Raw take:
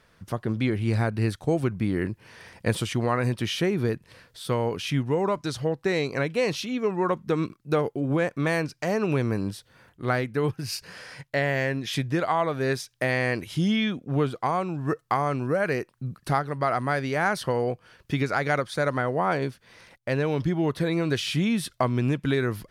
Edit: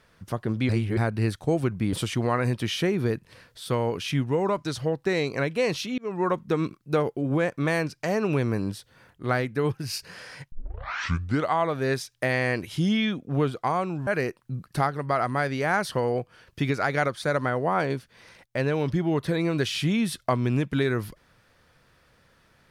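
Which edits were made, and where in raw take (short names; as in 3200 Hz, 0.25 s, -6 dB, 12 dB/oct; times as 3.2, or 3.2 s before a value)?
0.69–0.97 reverse
1.93–2.72 cut
6.77–7.07 fade in equal-power
11.31 tape start 0.99 s
14.86–15.59 cut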